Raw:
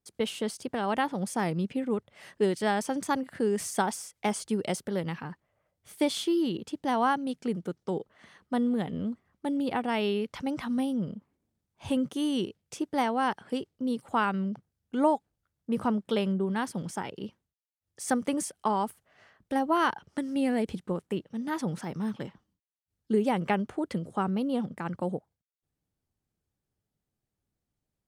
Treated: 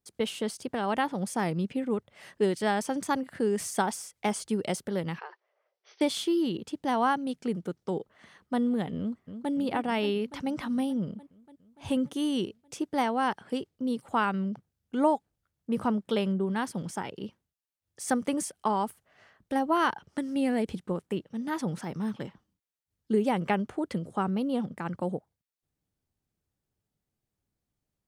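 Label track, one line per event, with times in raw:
5.190000	6.010000	brick-wall FIR band-pass 350–6200 Hz
8.980000	9.520000	echo throw 0.29 s, feedback 75%, level -9 dB

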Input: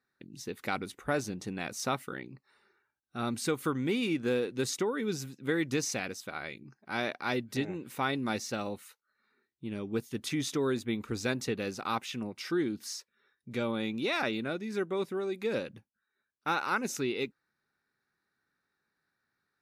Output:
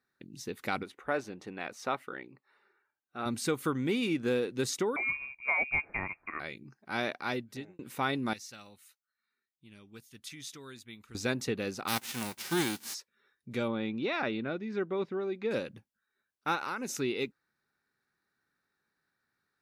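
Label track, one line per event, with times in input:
0.830000	3.260000	tone controls bass -12 dB, treble -13 dB
4.960000	6.400000	inverted band carrier 2600 Hz
7.180000	7.790000	fade out
8.330000	11.150000	passive tone stack bass-middle-treble 5-5-5
11.870000	12.930000	spectral whitening exponent 0.3
13.680000	15.510000	air absorption 200 m
16.550000	16.980000	compressor 10:1, threshold -31 dBFS

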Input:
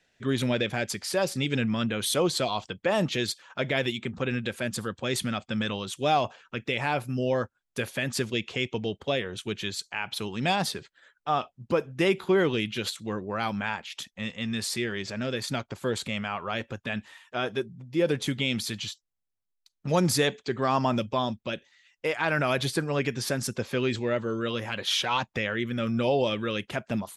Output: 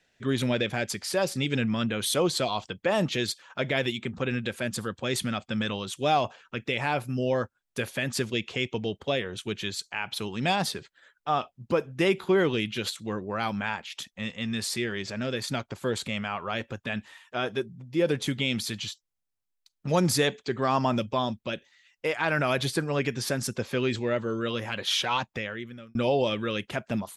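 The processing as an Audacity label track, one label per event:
25.110000	25.950000	fade out

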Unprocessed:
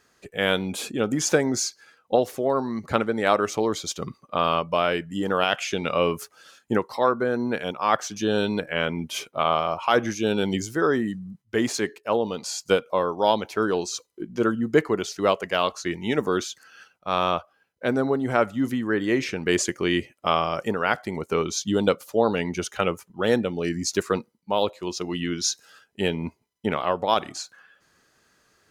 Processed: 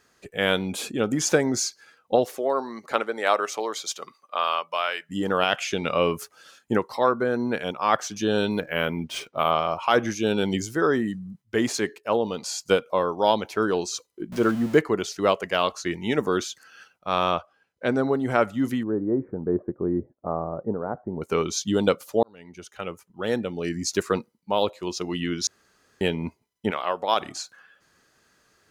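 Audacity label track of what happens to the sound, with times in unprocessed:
2.240000	5.090000	HPF 320 Hz -> 1000 Hz
8.510000	9.510000	decimation joined by straight lines rate divided by 3×
14.320000	14.780000	zero-crossing step of -32.5 dBFS
17.350000	18.100000	LPF 8900 Hz
18.830000	21.220000	Gaussian blur sigma 10 samples
22.230000	24.050000	fade in linear
25.470000	26.010000	room tone
26.700000	27.200000	HPF 830 Hz -> 380 Hz 6 dB/oct

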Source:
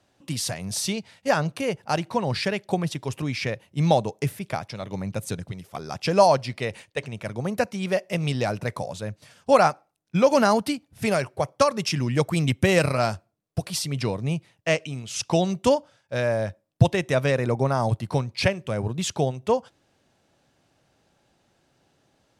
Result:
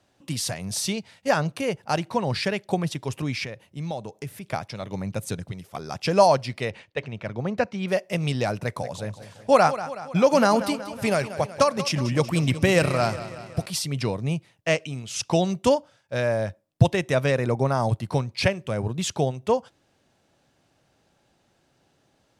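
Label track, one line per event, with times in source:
3.440000	4.520000	compressor 2:1, threshold -37 dBFS
6.700000	7.880000	LPF 4000 Hz
8.610000	13.660000	warbling echo 0.186 s, feedback 58%, depth 51 cents, level -13.5 dB

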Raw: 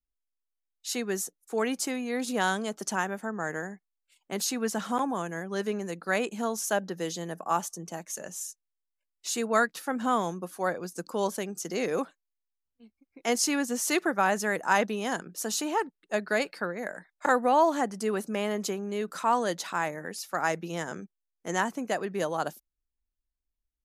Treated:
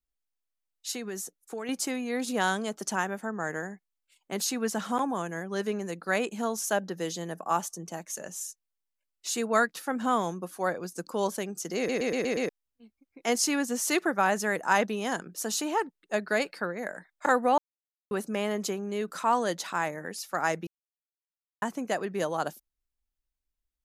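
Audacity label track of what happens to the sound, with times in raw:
0.910000	1.690000	compressor, threshold -32 dBFS
11.770000	11.770000	stutter in place 0.12 s, 6 plays
17.580000	18.110000	mute
20.670000	21.620000	mute

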